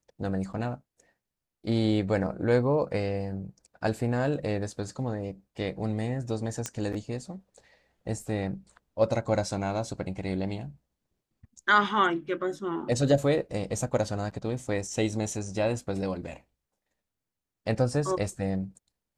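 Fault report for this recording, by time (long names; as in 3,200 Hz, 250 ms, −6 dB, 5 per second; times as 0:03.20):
0:06.66: click −16 dBFS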